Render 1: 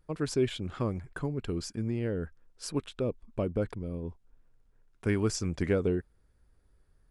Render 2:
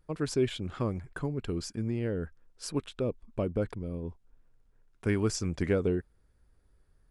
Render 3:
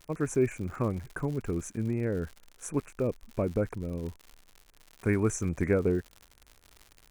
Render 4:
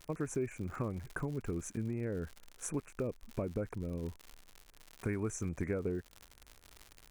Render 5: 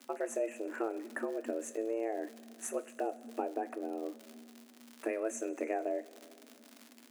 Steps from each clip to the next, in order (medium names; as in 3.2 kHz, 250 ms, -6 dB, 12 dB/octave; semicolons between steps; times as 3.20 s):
no audible change
Chebyshev band-stop 2.5–6 kHz, order 4; crackle 130 per s -41 dBFS; trim +2.5 dB
compression 3:1, threshold -35 dBFS, peak gain reduction 11 dB
frequency shift +220 Hz; two-slope reverb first 0.24 s, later 2.7 s, from -18 dB, DRR 9 dB